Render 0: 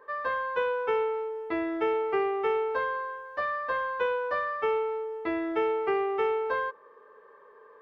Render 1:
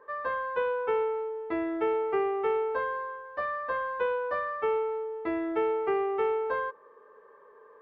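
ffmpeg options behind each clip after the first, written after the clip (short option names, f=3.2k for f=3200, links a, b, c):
-af "highshelf=f=2.8k:g=-10.5"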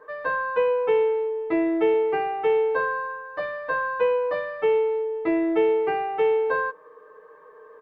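-af "aecho=1:1:6.4:0.81,volume=4dB"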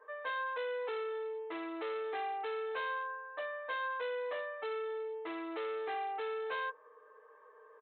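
-af "aresample=8000,asoftclip=type=hard:threshold=-24.5dB,aresample=44100,highpass=490,volume=-8.5dB"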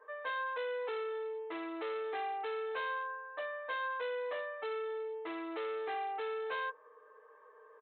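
-af anull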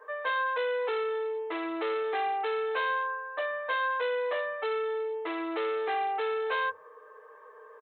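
-filter_complex "[0:a]acrossover=split=220[a][b];[a]adelay=130[c];[c][b]amix=inputs=2:normalize=0,volume=8dB"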